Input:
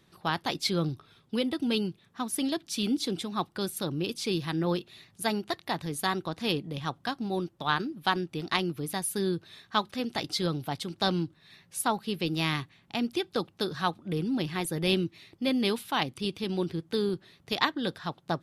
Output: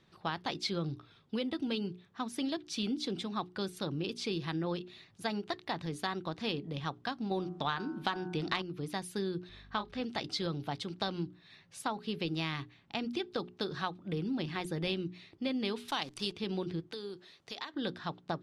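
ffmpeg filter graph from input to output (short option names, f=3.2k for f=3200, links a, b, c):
-filter_complex "[0:a]asettb=1/sr,asplit=3[a][b][c];[a]atrim=end=7.314[d];[b]atrim=start=7.31:end=8.62,asetpts=PTS-STARTPTS,afade=t=in:d=0.004:c=qsin,afade=t=out:st=1.306:d=0.004:c=qsin,bandreject=f=83.01:t=h:w=4,bandreject=f=166.02:t=h:w=4,bandreject=f=249.03:t=h:w=4,bandreject=f=332.04:t=h:w=4,bandreject=f=415.05:t=h:w=4,bandreject=f=498.06:t=h:w=4,bandreject=f=581.07:t=h:w=4,bandreject=f=664.08:t=h:w=4,bandreject=f=747.09:t=h:w=4,bandreject=f=830.1:t=h:w=4,bandreject=f=913.11:t=h:w=4,bandreject=f=996.12:t=h:w=4,bandreject=f=1.07913k:t=h:w=4,bandreject=f=1.16214k:t=h:w=4,bandreject=f=1.24515k:t=h:w=4,bandreject=f=1.32816k:t=h:w=4,bandreject=f=1.41117k:t=h:w=4,bandreject=f=1.49418k:t=h:w=4,bandreject=f=1.57719k:t=h:w=4,bandreject=f=1.6602k:t=h:w=4,acontrast=65[e];[c]atrim=start=8.616[f];[d][e]acrossfade=d=0.004:c1=hsin:c2=qsin[g];[g][f]acrossfade=d=0.004:c1=qsin:c2=hsin,asettb=1/sr,asplit=3[h][i][j];[h]atrim=end=9.494[k];[i]atrim=start=9.49:end=10.02,asetpts=PTS-STARTPTS,afade=t=in:d=0.004:c=qsin,afade=t=out:st=0.526:d=0.004:c=qsin,asplit=2[l][m];[m]adelay=29,volume=-8.5dB[n];[l][n]amix=inputs=2:normalize=0,atrim=end_sample=23373,aeval=exprs='val(0)+0.00251*(sin(2*PI*50*n/s)+sin(2*PI*2*50*n/s)/2+sin(2*PI*3*50*n/s)/3+sin(2*PI*4*50*n/s)/4+sin(2*PI*5*50*n/s)/5)':c=same,lowpass=f=3.5k:p=1[o];[j]atrim=start=10.016[p];[k][o]acrossfade=d=0.004:c1=hsin:c2=qsin[q];[q][p]acrossfade=d=0.004:c1=qsin:c2=hsin,asettb=1/sr,asplit=3[r][s][t];[r]atrim=end=15.884[u];[s]atrim=start=15.88:end=16.33,asetpts=PTS-STARTPTS,afade=t=in:d=0.004:c=qsin,afade=t=out:st=0.446:d=0.004:c=qsin,bass=f=250:g=-4,treble=f=4k:g=13,acrusher=bits=8:dc=4:mix=0:aa=0.000001[v];[t]atrim=start=16.326[w];[u][v]acrossfade=d=0.004:c1=hsin:c2=qsin[x];[x][w]acrossfade=d=0.004:c1=qsin:c2=hsin,asettb=1/sr,asplit=3[y][z][aa];[y]atrim=end=16.924[ab];[z]atrim=start=16.92:end=17.74,asetpts=PTS-STARTPTS,afade=t=in:d=0.004:c=qsin,afade=t=out:st=0.816:d=0.004:c=qsin,bass=f=250:g=-11,treble=f=4k:g=8,acompressor=threshold=-38dB:ratio=3:attack=3.2:release=140:knee=1:detection=peak[ac];[aa]atrim=start=17.736[ad];[ab][ac]acrossfade=d=0.004:c1=hsin:c2=qsin[ae];[ae][ad]acrossfade=d=0.004:c1=qsin:c2=hsin,lowpass=5.6k,bandreject=f=60:t=h:w=6,bandreject=f=120:t=h:w=6,bandreject=f=180:t=h:w=6,bandreject=f=240:t=h:w=6,bandreject=f=300:t=h:w=6,bandreject=f=360:t=h:w=6,bandreject=f=420:t=h:w=6,acompressor=threshold=-28dB:ratio=6,volume=-2.5dB"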